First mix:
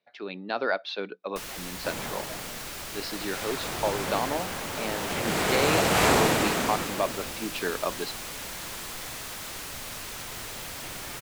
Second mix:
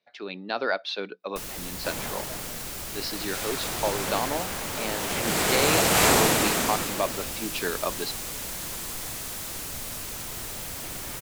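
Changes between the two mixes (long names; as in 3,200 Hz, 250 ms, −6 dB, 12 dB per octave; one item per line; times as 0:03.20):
first sound: add tilt shelving filter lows +5 dB, about 680 Hz
master: add high-shelf EQ 5,100 Hz +10 dB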